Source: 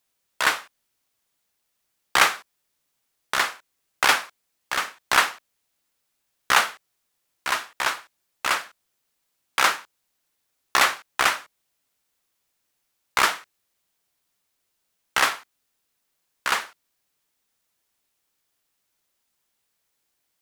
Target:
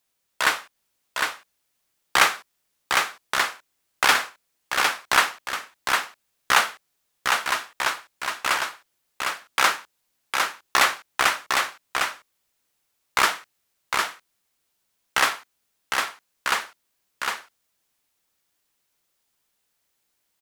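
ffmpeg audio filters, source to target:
ffmpeg -i in.wav -af "aecho=1:1:756:0.631" out.wav

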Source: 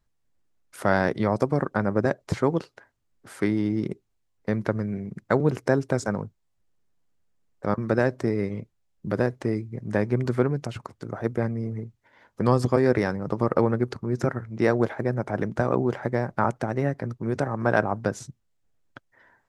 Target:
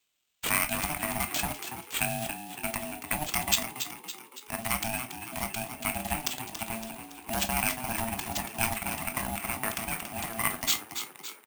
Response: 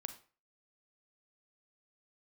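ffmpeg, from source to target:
-filter_complex "[0:a]highpass=frequency=180:width=0.5412,highpass=frequency=180:width=1.3066,equalizer=frequency=4200:width_type=o:width=1.1:gain=-9.5,atempo=1.7,equalizer=frequency=250:width_type=o:width=1:gain=3,equalizer=frequency=500:width_type=o:width=1:gain=-5,equalizer=frequency=1000:width_type=o:width=1:gain=-6,equalizer=frequency=2000:width_type=o:width=1:gain=11,equalizer=frequency=4000:width_type=o:width=1:gain=5,equalizer=frequency=8000:width_type=o:width=1:gain=11,aeval=exprs='val(0)*sin(2*PI*450*n/s)':channel_layout=same,crystalizer=i=4:c=0,asplit=2[link_01][link_02];[link_02]acrusher=bits=4:mix=0:aa=0.000001,volume=-11dB[link_03];[link_01][link_03]amix=inputs=2:normalize=0[link_04];[1:a]atrim=start_sample=2205,asetrate=88200,aresample=44100[link_05];[link_04][link_05]afir=irnorm=-1:irlink=0,acrusher=samples=4:mix=1:aa=0.000001,aexciter=amount=2.4:drive=3.8:freq=2600,asplit=2[link_06][link_07];[link_07]asplit=6[link_08][link_09][link_10][link_11][link_12][link_13];[link_08]adelay=281,afreqshift=61,volume=-9dB[link_14];[link_09]adelay=562,afreqshift=122,volume=-14.7dB[link_15];[link_10]adelay=843,afreqshift=183,volume=-20.4dB[link_16];[link_11]adelay=1124,afreqshift=244,volume=-26dB[link_17];[link_12]adelay=1405,afreqshift=305,volume=-31.7dB[link_18];[link_13]adelay=1686,afreqshift=366,volume=-37.4dB[link_19];[link_14][link_15][link_16][link_17][link_18][link_19]amix=inputs=6:normalize=0[link_20];[link_06][link_20]amix=inputs=2:normalize=0"

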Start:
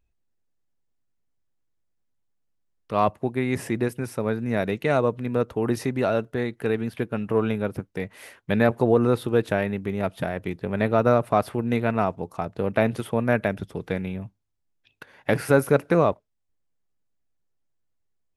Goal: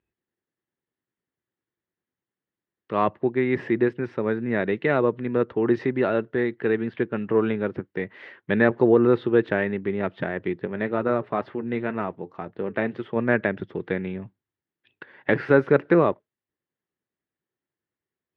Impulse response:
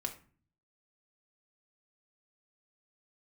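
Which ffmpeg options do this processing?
-filter_complex "[0:a]equalizer=frequency=2500:width_type=o:width=0.21:gain=-3.5,asplit=3[link_01][link_02][link_03];[link_01]afade=type=out:start_time=10.65:duration=0.02[link_04];[link_02]flanger=delay=3.2:depth=2.9:regen=-76:speed=2:shape=triangular,afade=type=in:start_time=10.65:duration=0.02,afade=type=out:start_time=13.15:duration=0.02[link_05];[link_03]afade=type=in:start_time=13.15:duration=0.02[link_06];[link_04][link_05][link_06]amix=inputs=3:normalize=0,highpass=130,equalizer=frequency=360:width_type=q:width=4:gain=7,equalizer=frequency=690:width_type=q:width=4:gain=-4,equalizer=frequency=1800:width_type=q:width=4:gain=6,lowpass=frequency=3400:width=0.5412,lowpass=frequency=3400:width=1.3066"

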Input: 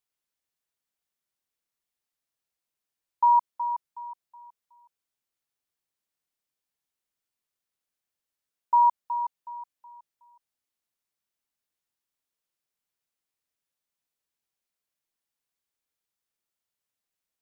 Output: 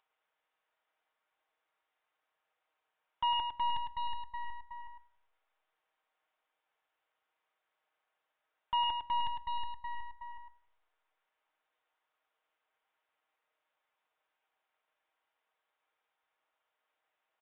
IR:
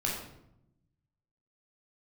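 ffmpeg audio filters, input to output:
-filter_complex "[0:a]highpass=680,aemphasis=mode=production:type=riaa,aecho=1:1:6.4:0.47,acompressor=mode=upward:threshold=-38dB:ratio=2.5,asoftclip=type=hard:threshold=-18dB,adynamicsmooth=sensitivity=3:basefreq=1100,asoftclip=type=tanh:threshold=-30.5dB,aeval=exprs='0.0299*(cos(1*acos(clip(val(0)/0.0299,-1,1)))-cos(1*PI/2))+0.00335*(cos(5*acos(clip(val(0)/0.0299,-1,1)))-cos(5*PI/2))+0.00473*(cos(8*acos(clip(val(0)/0.0299,-1,1)))-cos(8*PI/2))':channel_layout=same,aecho=1:1:105:0.447,asplit=2[link_01][link_02];[1:a]atrim=start_sample=2205[link_03];[link_02][link_03]afir=irnorm=-1:irlink=0,volume=-21.5dB[link_04];[link_01][link_04]amix=inputs=2:normalize=0,aresample=8000,aresample=44100,volume=1dB"

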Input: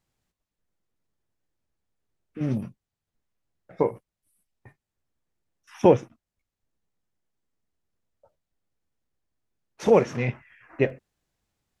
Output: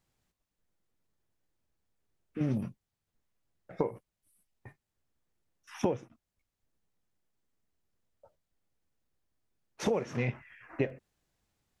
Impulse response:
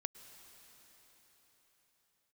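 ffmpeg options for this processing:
-af "acompressor=threshold=-26dB:ratio=12"

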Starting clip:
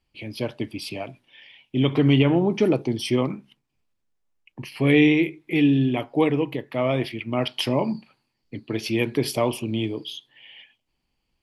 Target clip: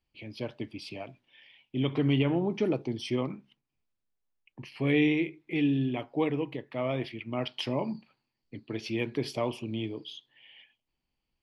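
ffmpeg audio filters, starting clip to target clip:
ffmpeg -i in.wav -af "lowpass=6200,volume=-8dB" out.wav

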